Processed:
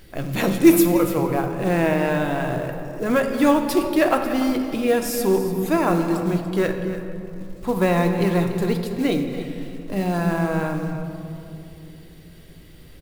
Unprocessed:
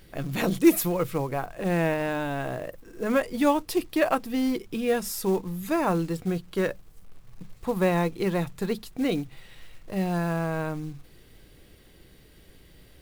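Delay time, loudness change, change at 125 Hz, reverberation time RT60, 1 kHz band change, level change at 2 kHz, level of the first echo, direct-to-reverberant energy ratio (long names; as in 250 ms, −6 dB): 289 ms, +5.5 dB, +6.0 dB, 2.9 s, +5.5 dB, +5.5 dB, −12.5 dB, 4.0 dB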